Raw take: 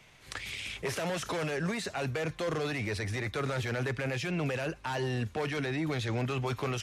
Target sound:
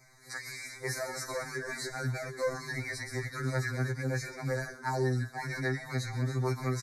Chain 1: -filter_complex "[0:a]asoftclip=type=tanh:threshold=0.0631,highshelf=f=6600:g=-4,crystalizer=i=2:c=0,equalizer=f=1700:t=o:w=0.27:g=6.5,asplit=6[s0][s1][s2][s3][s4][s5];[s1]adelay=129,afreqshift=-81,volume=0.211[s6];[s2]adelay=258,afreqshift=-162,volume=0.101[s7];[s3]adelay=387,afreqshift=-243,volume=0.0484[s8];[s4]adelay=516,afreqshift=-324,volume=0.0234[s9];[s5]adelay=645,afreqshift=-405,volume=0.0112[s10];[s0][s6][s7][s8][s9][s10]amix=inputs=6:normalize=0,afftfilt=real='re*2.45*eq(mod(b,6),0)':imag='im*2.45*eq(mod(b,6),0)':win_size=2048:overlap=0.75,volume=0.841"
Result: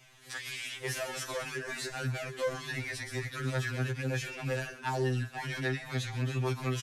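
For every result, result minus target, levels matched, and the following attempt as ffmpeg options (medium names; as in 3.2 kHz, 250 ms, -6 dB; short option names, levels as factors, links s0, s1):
saturation: distortion +12 dB; 4 kHz band +4.0 dB
-filter_complex "[0:a]asoftclip=type=tanh:threshold=0.141,highshelf=f=6600:g=-4,crystalizer=i=2:c=0,equalizer=f=1700:t=o:w=0.27:g=6.5,asplit=6[s0][s1][s2][s3][s4][s5];[s1]adelay=129,afreqshift=-81,volume=0.211[s6];[s2]adelay=258,afreqshift=-162,volume=0.101[s7];[s3]adelay=387,afreqshift=-243,volume=0.0484[s8];[s4]adelay=516,afreqshift=-324,volume=0.0234[s9];[s5]adelay=645,afreqshift=-405,volume=0.0112[s10];[s0][s6][s7][s8][s9][s10]amix=inputs=6:normalize=0,afftfilt=real='re*2.45*eq(mod(b,6),0)':imag='im*2.45*eq(mod(b,6),0)':win_size=2048:overlap=0.75,volume=0.841"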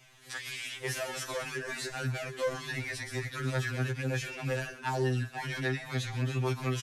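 4 kHz band +3.5 dB
-filter_complex "[0:a]asoftclip=type=tanh:threshold=0.141,highshelf=f=6600:g=-4,crystalizer=i=2:c=0,asuperstop=centerf=3000:order=20:qfactor=2,equalizer=f=1700:t=o:w=0.27:g=6.5,asplit=6[s0][s1][s2][s3][s4][s5];[s1]adelay=129,afreqshift=-81,volume=0.211[s6];[s2]adelay=258,afreqshift=-162,volume=0.101[s7];[s3]adelay=387,afreqshift=-243,volume=0.0484[s8];[s4]adelay=516,afreqshift=-324,volume=0.0234[s9];[s5]adelay=645,afreqshift=-405,volume=0.0112[s10];[s0][s6][s7][s8][s9][s10]amix=inputs=6:normalize=0,afftfilt=real='re*2.45*eq(mod(b,6),0)':imag='im*2.45*eq(mod(b,6),0)':win_size=2048:overlap=0.75,volume=0.841"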